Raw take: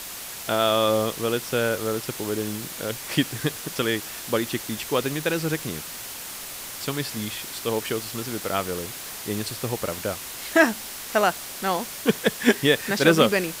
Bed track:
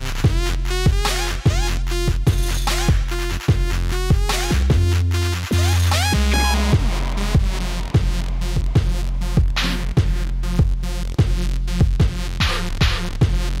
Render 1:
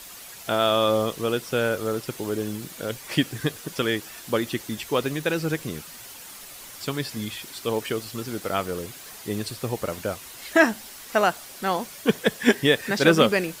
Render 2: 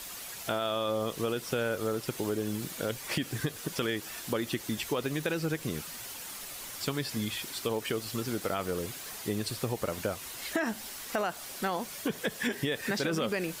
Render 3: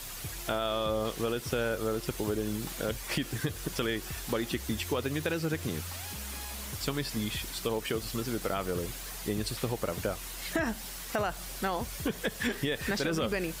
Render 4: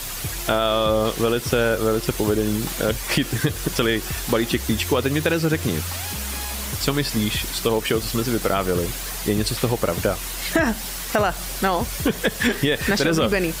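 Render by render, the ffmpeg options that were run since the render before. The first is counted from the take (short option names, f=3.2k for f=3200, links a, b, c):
-af "afftdn=nr=8:nf=-37"
-af "alimiter=limit=-15dB:level=0:latency=1:release=30,acompressor=threshold=-28dB:ratio=4"
-filter_complex "[1:a]volume=-26dB[a];[0:a][a]amix=inputs=2:normalize=0"
-af "volume=11dB"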